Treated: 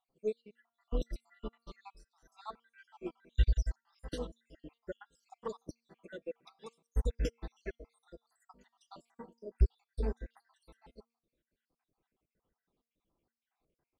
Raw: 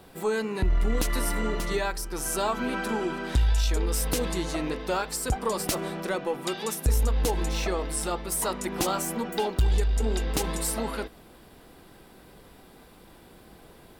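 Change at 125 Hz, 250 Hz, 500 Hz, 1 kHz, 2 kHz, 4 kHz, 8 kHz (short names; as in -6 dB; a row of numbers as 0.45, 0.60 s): -9.5, -16.0, -13.5, -21.5, -21.0, -21.0, -29.5 dB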